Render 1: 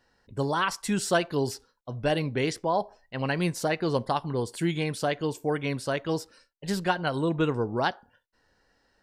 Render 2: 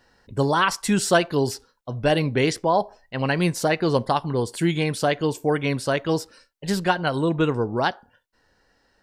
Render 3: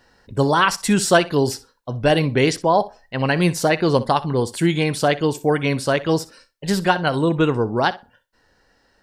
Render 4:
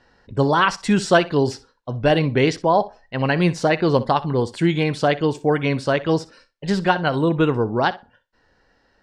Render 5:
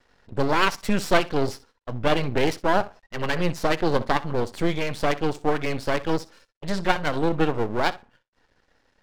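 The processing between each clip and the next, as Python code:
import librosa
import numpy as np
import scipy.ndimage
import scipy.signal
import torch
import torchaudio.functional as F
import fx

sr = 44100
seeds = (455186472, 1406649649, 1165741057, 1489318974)

y1 = fx.rider(x, sr, range_db=5, speed_s=2.0)
y1 = F.gain(torch.from_numpy(y1), 5.0).numpy()
y2 = fx.room_flutter(y1, sr, wall_m=10.6, rt60_s=0.21)
y2 = F.gain(torch.from_numpy(y2), 3.5).numpy()
y3 = fx.air_absorb(y2, sr, metres=100.0)
y4 = np.maximum(y3, 0.0)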